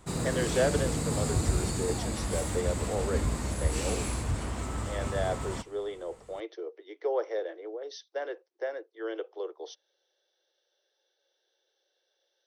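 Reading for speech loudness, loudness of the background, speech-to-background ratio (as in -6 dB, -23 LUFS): -35.5 LUFS, -32.0 LUFS, -3.5 dB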